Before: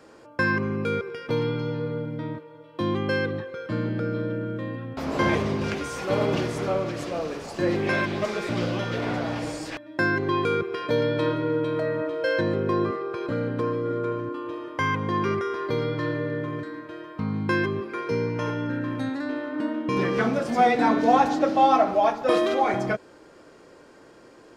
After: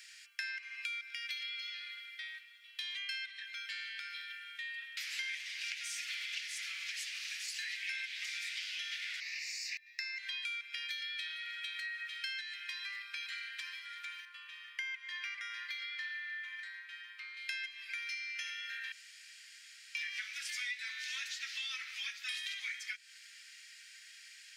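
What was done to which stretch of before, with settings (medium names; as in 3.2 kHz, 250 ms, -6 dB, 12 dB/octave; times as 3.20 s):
5.70–6.62 s: loudspeaker Doppler distortion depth 0.16 ms
9.20–10.19 s: static phaser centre 2.2 kHz, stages 8
14.25–17.37 s: tilt shelf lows +9.5 dB, about 1.4 kHz
18.92–19.95 s: room tone
whole clip: steep high-pass 1.9 kHz 48 dB/octave; compression 6:1, threshold -47 dBFS; trim +8.5 dB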